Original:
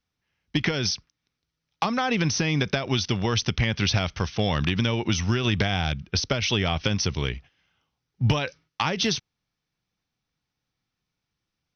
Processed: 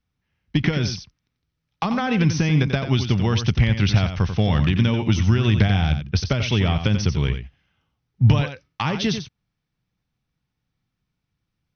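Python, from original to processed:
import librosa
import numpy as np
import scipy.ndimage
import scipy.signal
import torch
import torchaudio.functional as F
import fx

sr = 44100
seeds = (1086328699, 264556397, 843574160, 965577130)

p1 = fx.bass_treble(x, sr, bass_db=8, treble_db=-6)
y = p1 + fx.echo_single(p1, sr, ms=90, db=-9.0, dry=0)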